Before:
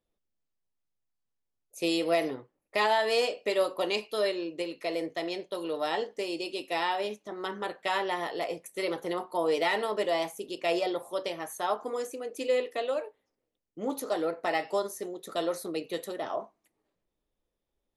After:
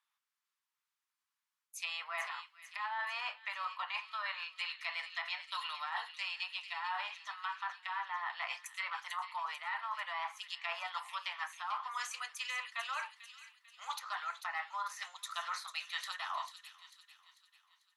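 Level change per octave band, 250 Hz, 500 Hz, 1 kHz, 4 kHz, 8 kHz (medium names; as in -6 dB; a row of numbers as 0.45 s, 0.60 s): under -40 dB, -29.0 dB, -6.0 dB, -5.0 dB, -5.0 dB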